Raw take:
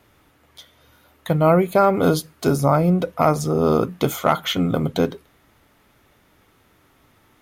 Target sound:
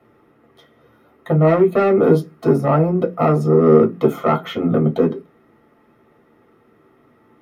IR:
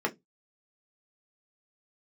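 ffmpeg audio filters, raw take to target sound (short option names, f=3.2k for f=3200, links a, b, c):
-filter_complex "[0:a]tiltshelf=f=1.1k:g=4,asettb=1/sr,asplit=3[a][b][c];[a]atrim=end=1.474[d];[b]atrim=start=1.47:end=1.98,asetpts=PTS-STARTPTS,afade=t=in:d=0.004:c=qsin,afade=t=out:st=0.506:d=0.004:c=qsin,aeval=exprs='clip(val(0),-1,0.2)':c=same[e];[c]atrim=start=1.976[f];[d][e]acrossfade=d=0.004:c1=hsin:c2=qsin[g];[g][f]acrossfade=d=0.004:c1=qsin:c2=hsin,acontrast=85[h];[1:a]atrim=start_sample=2205[i];[h][i]afir=irnorm=-1:irlink=0,volume=-15dB"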